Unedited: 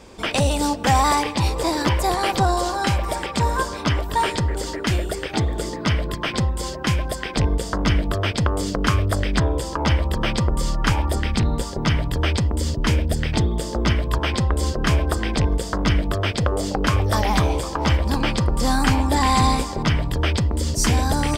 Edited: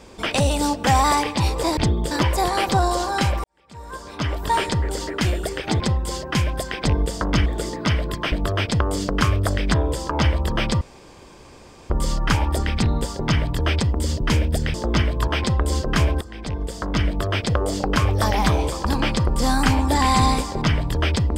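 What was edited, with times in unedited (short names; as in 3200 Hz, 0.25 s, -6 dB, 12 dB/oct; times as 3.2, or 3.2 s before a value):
3.1–4.11 fade in quadratic
5.46–6.32 move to 7.98
10.47 insert room tone 1.09 s
13.31–13.65 move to 1.77
15.12–16.56 fade in equal-power, from -19 dB
17.76–18.06 cut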